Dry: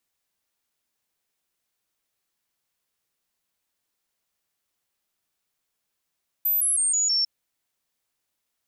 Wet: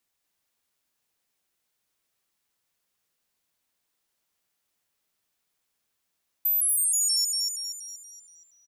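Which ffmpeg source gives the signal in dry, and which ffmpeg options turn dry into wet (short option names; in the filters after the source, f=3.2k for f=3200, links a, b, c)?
-f lavfi -i "aevalsrc='0.106*clip(min(mod(t,0.16),0.16-mod(t,0.16))/0.005,0,1)*sin(2*PI*13700*pow(2,-floor(t/0.16)/3)*mod(t,0.16))':d=0.8:s=44100"
-filter_complex "[0:a]asplit=2[a][b];[b]asplit=6[c][d][e][f][g][h];[c]adelay=237,afreqshift=66,volume=-5.5dB[i];[d]adelay=474,afreqshift=132,volume=-12.1dB[j];[e]adelay=711,afreqshift=198,volume=-18.6dB[k];[f]adelay=948,afreqshift=264,volume=-25.2dB[l];[g]adelay=1185,afreqshift=330,volume=-31.7dB[m];[h]adelay=1422,afreqshift=396,volume=-38.3dB[n];[i][j][k][l][m][n]amix=inputs=6:normalize=0[o];[a][o]amix=inputs=2:normalize=0,acompressor=threshold=-21dB:ratio=6"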